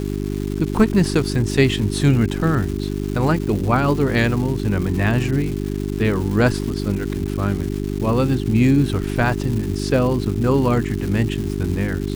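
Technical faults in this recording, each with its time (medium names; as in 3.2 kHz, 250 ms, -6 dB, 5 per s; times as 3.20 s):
crackle 440 per s -27 dBFS
hum 50 Hz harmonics 8 -24 dBFS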